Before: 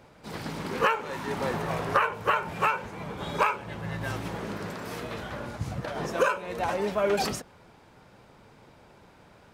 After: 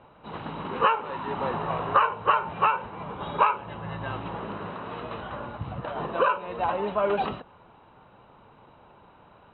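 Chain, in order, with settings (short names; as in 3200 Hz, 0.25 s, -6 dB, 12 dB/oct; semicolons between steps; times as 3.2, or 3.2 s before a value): rippled Chebyshev low-pass 4000 Hz, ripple 9 dB; high shelf 2100 Hz -7 dB; gain +7 dB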